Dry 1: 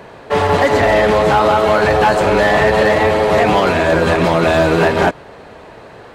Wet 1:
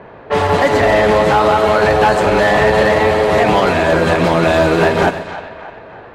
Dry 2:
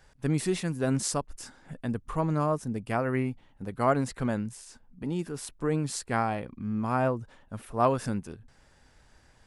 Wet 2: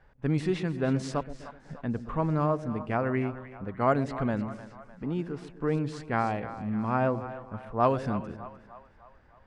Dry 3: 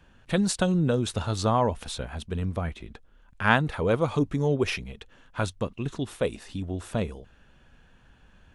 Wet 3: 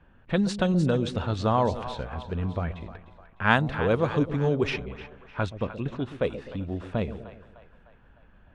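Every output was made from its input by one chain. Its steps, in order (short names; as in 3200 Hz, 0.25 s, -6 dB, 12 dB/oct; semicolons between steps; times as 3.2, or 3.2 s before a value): split-band echo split 620 Hz, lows 0.126 s, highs 0.303 s, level -12 dB; low-pass opened by the level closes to 1900 Hz, open at -12.5 dBFS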